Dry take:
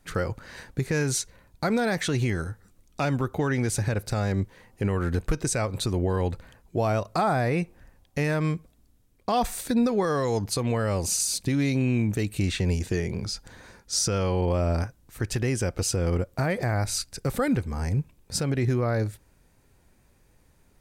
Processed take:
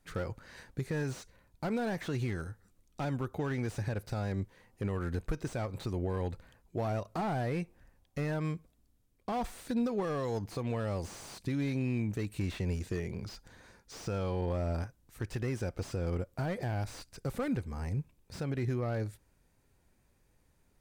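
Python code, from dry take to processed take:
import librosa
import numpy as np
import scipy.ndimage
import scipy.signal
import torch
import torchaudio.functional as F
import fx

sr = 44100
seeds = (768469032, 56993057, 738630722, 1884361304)

y = fx.slew_limit(x, sr, full_power_hz=58.0)
y = F.gain(torch.from_numpy(y), -8.5).numpy()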